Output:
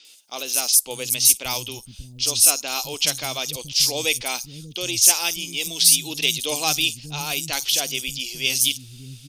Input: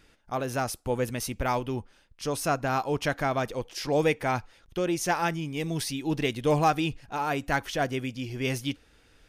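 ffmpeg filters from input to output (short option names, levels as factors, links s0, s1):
-filter_complex "[0:a]acrossover=split=230|5500[s0][s1][s2];[s2]adelay=50[s3];[s0]adelay=590[s4];[s4][s1][s3]amix=inputs=3:normalize=0,aexciter=amount=10.1:drive=8.9:freq=2700,volume=0.596"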